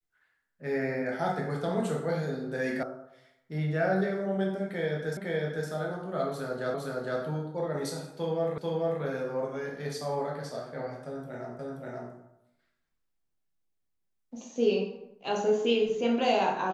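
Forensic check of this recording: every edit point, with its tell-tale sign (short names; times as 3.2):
2.83 sound cut off
5.17 repeat of the last 0.51 s
6.74 repeat of the last 0.46 s
8.58 repeat of the last 0.44 s
11.59 repeat of the last 0.53 s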